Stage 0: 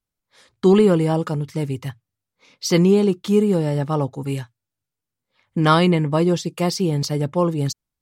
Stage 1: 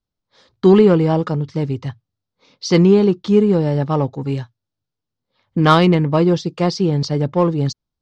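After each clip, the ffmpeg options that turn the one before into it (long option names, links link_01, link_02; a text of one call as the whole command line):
ffmpeg -i in.wav -filter_complex "[0:a]lowpass=frequency=5200:width=0.5412,lowpass=frequency=5200:width=1.3066,acrossover=split=2700[link_01][link_02];[link_01]adynamicsmooth=sensitivity=2:basefreq=1800[link_03];[link_03][link_02]amix=inputs=2:normalize=0,volume=3.5dB" out.wav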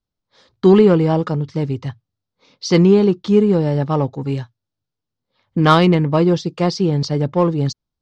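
ffmpeg -i in.wav -af anull out.wav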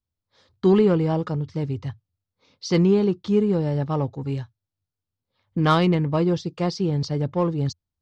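ffmpeg -i in.wav -af "equalizer=frequency=85:width_type=o:width=0.56:gain=14,volume=-7dB" out.wav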